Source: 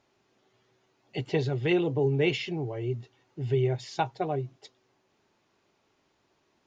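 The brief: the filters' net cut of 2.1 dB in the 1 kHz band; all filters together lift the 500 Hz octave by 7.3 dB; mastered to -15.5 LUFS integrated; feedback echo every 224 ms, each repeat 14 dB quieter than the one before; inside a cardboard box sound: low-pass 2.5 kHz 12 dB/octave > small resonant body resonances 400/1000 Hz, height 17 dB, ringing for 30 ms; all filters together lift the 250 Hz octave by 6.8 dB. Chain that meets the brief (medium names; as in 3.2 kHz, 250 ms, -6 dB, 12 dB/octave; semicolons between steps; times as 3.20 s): low-pass 2.5 kHz 12 dB/octave; peaking EQ 250 Hz +7.5 dB; peaking EQ 500 Hz +8 dB; peaking EQ 1 kHz -8.5 dB; feedback delay 224 ms, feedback 20%, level -14 dB; small resonant body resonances 400/1000 Hz, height 17 dB, ringing for 30 ms; trim -5.5 dB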